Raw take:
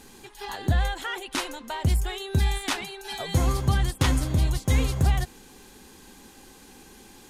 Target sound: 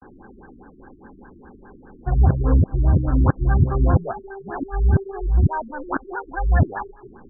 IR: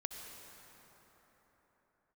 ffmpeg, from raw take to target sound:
-af "areverse,crystalizer=i=6.5:c=0,afftfilt=real='re*lt(b*sr/1024,370*pow(1800/370,0.5+0.5*sin(2*PI*4.9*pts/sr)))':imag='im*lt(b*sr/1024,370*pow(1800/370,0.5+0.5*sin(2*PI*4.9*pts/sr)))':win_size=1024:overlap=0.75,volume=6dB"

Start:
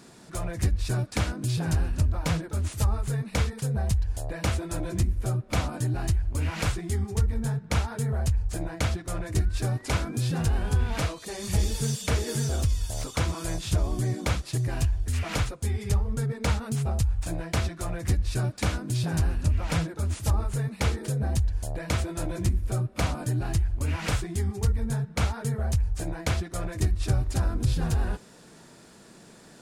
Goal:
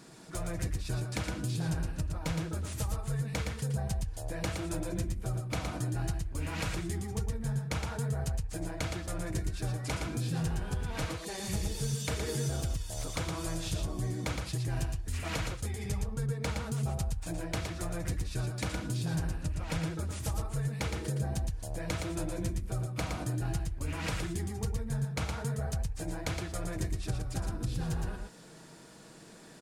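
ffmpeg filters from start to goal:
ffmpeg -i in.wav -filter_complex "[0:a]aecho=1:1:6.3:0.32,acompressor=threshold=-29dB:ratio=3,asplit=2[link_01][link_02];[link_02]aecho=0:1:116:0.562[link_03];[link_01][link_03]amix=inputs=2:normalize=0,volume=-3dB" out.wav

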